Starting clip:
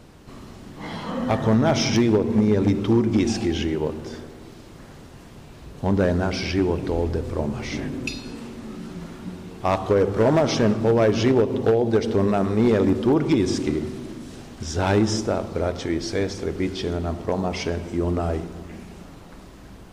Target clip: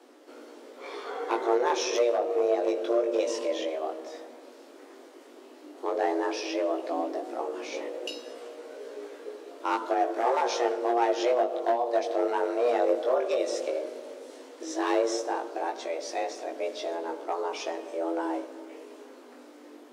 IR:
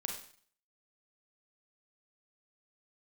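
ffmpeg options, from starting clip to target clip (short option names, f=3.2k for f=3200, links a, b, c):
-af "afreqshift=240,flanger=delay=16.5:depth=4.5:speed=0.12,volume=-4dB"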